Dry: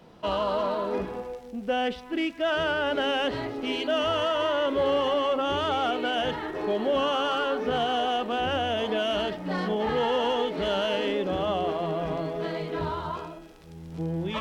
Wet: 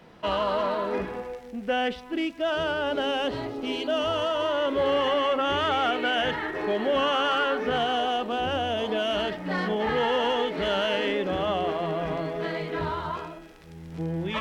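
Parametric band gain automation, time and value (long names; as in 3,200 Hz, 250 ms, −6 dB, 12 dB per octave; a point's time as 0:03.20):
parametric band 1,900 Hz 0.93 octaves
0:01.67 +7 dB
0:02.31 −4 dB
0:04.43 −4 dB
0:05.05 +8 dB
0:07.59 +8 dB
0:08.33 −2 dB
0:08.85 −2 dB
0:09.40 +6 dB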